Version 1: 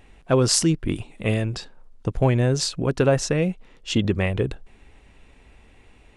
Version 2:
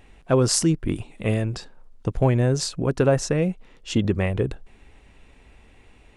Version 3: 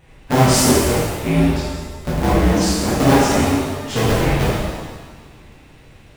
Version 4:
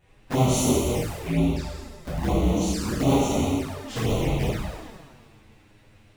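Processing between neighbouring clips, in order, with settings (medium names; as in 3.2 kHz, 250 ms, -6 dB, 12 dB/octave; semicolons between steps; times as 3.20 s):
dynamic bell 3.3 kHz, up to -5 dB, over -42 dBFS, Q 0.9
cycle switcher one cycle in 2, inverted; pitch-shifted reverb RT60 1.3 s, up +7 st, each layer -8 dB, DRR -9 dB; trim -3.5 dB
touch-sensitive flanger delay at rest 11 ms, full sweep at -12.5 dBFS; trim -6.5 dB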